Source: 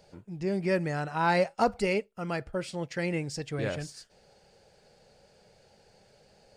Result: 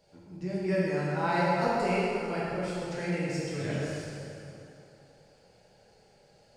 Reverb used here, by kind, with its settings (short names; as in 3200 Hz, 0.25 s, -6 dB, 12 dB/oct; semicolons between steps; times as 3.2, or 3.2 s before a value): plate-style reverb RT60 2.9 s, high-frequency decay 0.75×, DRR -8 dB; gain -9 dB